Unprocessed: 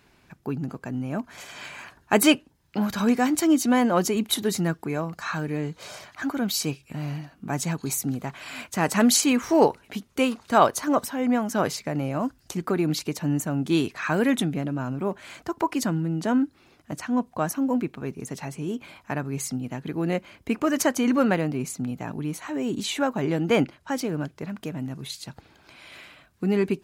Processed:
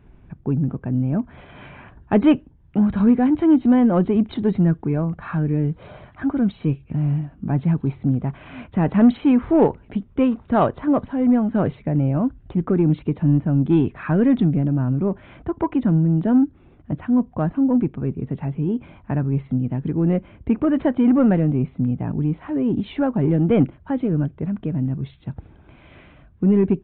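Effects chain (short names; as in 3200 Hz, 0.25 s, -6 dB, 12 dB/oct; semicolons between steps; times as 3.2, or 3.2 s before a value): tilt -4.5 dB/oct; in parallel at -3 dB: soft clip -13 dBFS, distortion -12 dB; on the sum: downsampling 8000 Hz; gain -5.5 dB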